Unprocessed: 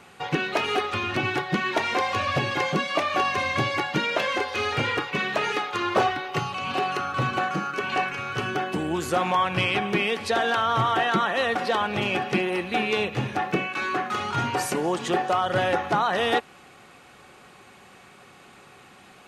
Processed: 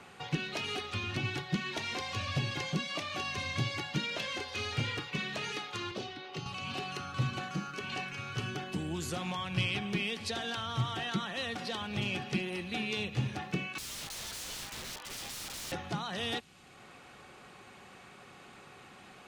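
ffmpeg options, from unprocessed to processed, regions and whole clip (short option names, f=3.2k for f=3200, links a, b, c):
-filter_complex "[0:a]asettb=1/sr,asplit=3[a][b][c];[a]atrim=end=5.914[d];[b]atrim=start=5.91:end=6.46,asetpts=PTS-STARTPTS,afade=t=in:d=0.004:c=qsin,afade=t=out:st=0.546:d=0.004:c=qsin,acrossover=split=200 5500:gain=0.251 1 0.224[e][f][g];[e][f][g]amix=inputs=3:normalize=0,acrossover=split=490|3000[h][i][j];[i]acompressor=threshold=-40dB:ratio=2.5:attack=3.2:release=140:knee=2.83:detection=peak[k];[h][k][j]amix=inputs=3:normalize=0[l];[c]atrim=start=6.456[m];[d][l]acrossfade=d=0.004:c1=hsin:c2=qsin[n];[n][m]acrossfade=d=0.004:c1=qsin:c2=hsin,asettb=1/sr,asplit=3[o][p][q];[o]atrim=end=13.784[r];[p]atrim=start=13.78:end=15.72,asetpts=PTS-STARTPTS,afade=t=in:d=0.004:c=qsin,afade=t=out:st=1.936:d=0.004:c=qsin,highpass=770,lowpass=2.2k,afreqshift=62,aeval=exprs='(mod(37.6*val(0)+1,2)-1)/37.6':c=same[s];[q]atrim=start=15.716[t];[r][s]acrossfade=d=0.004:c1=hsin:c2=qsin[u];[u][t]acrossfade=d=0.004:c1=qsin:c2=hsin,highshelf=f=11k:g=-9.5,acrossover=split=210|3000[v][w][x];[w]acompressor=threshold=-50dB:ratio=2[y];[v][y][x]amix=inputs=3:normalize=0,volume=-2dB"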